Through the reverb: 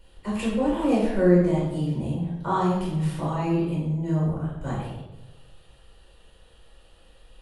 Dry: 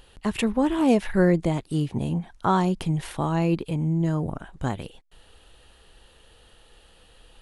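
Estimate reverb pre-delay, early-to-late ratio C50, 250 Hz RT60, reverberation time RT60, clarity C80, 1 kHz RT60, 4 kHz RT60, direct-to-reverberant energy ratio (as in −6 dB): 4 ms, 1.0 dB, 1.2 s, 1.0 s, 4.0 dB, 0.95 s, 0.70 s, −7.5 dB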